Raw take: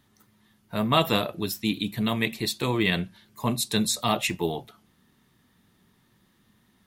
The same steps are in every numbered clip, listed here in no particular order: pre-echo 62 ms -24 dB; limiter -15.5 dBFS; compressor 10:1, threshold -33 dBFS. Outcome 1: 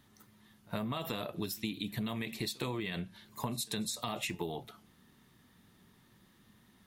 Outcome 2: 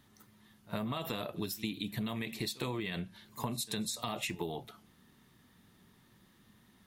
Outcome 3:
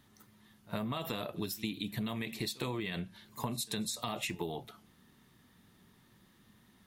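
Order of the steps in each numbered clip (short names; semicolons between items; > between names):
limiter > compressor > pre-echo; pre-echo > limiter > compressor; limiter > pre-echo > compressor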